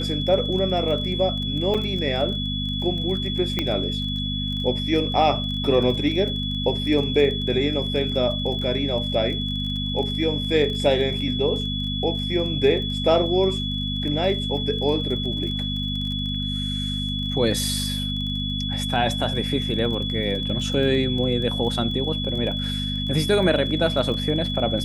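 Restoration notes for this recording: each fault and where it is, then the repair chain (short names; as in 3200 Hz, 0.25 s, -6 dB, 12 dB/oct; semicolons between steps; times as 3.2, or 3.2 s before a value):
crackle 24/s -31 dBFS
hum 50 Hz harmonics 5 -28 dBFS
tone 3400 Hz -28 dBFS
1.74–1.75 gap 5.8 ms
3.59 pop -10 dBFS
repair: de-click; de-hum 50 Hz, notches 5; notch 3400 Hz, Q 30; interpolate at 1.74, 5.8 ms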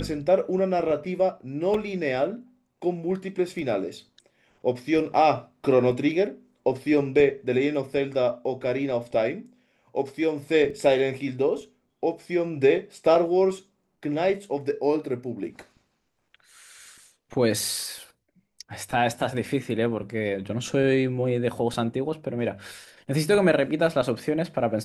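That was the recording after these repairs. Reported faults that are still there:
3.59 pop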